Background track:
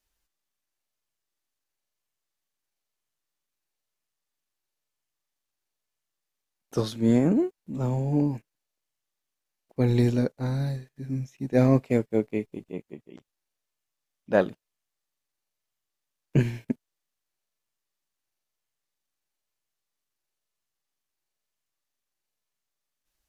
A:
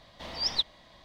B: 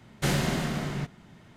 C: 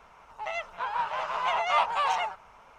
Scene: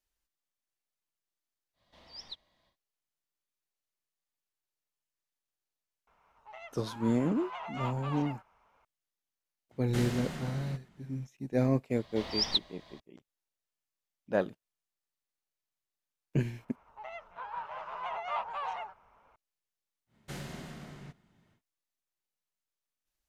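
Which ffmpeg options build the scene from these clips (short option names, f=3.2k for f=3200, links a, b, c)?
-filter_complex "[1:a]asplit=2[a][b];[3:a]asplit=2[c][d];[2:a]asplit=2[e][f];[0:a]volume=-7.5dB[g];[c]highshelf=f=7.6k:g=-11.5[h];[d]lowpass=f=1.6k:p=1[i];[a]atrim=end=1.04,asetpts=PTS-STARTPTS,volume=-17.5dB,afade=t=in:d=0.1,afade=t=out:st=0.94:d=0.1,adelay=1730[j];[h]atrim=end=2.78,asetpts=PTS-STARTPTS,volume=-14dB,afade=t=in:d=0.004:c=hsin,afade=t=out:st=2.776:d=0.004:c=hsin,adelay=6070[k];[e]atrim=end=1.56,asetpts=PTS-STARTPTS,volume=-10.5dB,afade=t=in:d=0.004:c=hsin,afade=t=out:st=1.556:d=0.004:c=hsin,adelay=9710[l];[b]atrim=end=1.04,asetpts=PTS-STARTPTS,volume=-1dB,afade=t=in:d=0.004:c=hsin,afade=t=out:st=1.036:d=0.004:c=hsin,adelay=11960[m];[i]atrim=end=2.78,asetpts=PTS-STARTPTS,volume=-8.5dB,afade=t=in:d=0.004:c=hsin,afade=t=out:st=2.776:d=0.004:c=hsin,adelay=16580[n];[f]atrim=end=1.56,asetpts=PTS-STARTPTS,volume=-16dB,afade=t=in:d=0.1,afade=t=out:st=1.46:d=0.1,adelay=20060[o];[g][j][k][l][m][n][o]amix=inputs=7:normalize=0"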